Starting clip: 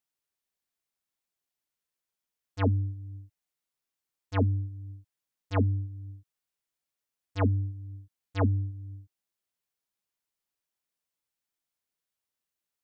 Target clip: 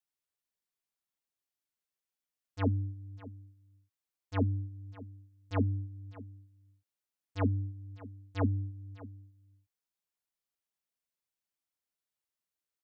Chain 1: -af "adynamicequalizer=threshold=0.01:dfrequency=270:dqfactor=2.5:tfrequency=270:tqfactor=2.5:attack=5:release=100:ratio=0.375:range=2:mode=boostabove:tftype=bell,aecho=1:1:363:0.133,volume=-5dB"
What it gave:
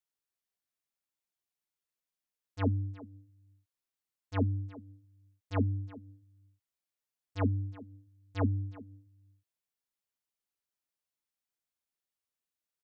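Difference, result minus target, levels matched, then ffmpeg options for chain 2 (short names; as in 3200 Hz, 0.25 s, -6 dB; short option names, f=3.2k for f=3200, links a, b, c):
echo 0.236 s early
-af "adynamicequalizer=threshold=0.01:dfrequency=270:dqfactor=2.5:tfrequency=270:tqfactor=2.5:attack=5:release=100:ratio=0.375:range=2:mode=boostabove:tftype=bell,aecho=1:1:599:0.133,volume=-5dB"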